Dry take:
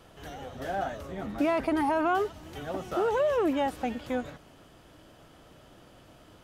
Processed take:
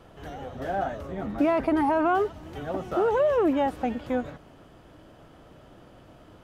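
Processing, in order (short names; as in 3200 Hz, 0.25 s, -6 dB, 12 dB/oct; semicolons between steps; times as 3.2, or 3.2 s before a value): high shelf 2500 Hz -10 dB; gain +4 dB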